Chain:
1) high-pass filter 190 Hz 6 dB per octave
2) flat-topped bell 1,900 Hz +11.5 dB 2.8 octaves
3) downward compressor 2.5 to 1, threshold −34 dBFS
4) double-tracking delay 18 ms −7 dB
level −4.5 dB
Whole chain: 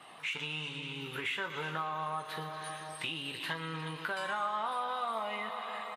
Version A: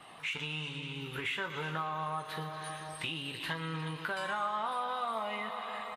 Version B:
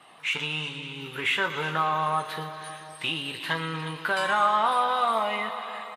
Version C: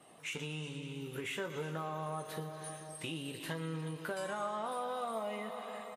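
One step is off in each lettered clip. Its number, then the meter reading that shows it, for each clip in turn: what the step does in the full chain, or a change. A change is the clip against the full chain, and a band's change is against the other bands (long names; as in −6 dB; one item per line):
1, 125 Hz band +3.5 dB
3, average gain reduction 7.0 dB
2, 2 kHz band −9.5 dB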